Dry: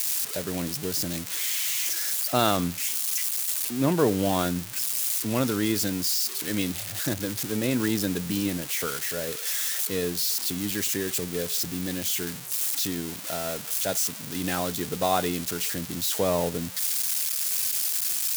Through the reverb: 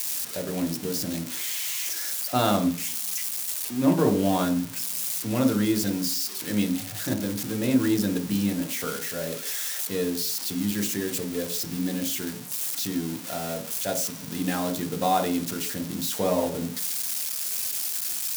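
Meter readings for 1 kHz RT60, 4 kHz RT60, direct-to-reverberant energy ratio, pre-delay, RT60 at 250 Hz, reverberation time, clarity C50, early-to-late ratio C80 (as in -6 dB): 0.50 s, 0.85 s, 4.0 dB, 3 ms, 0.50 s, 0.50 s, 12.0 dB, 15.0 dB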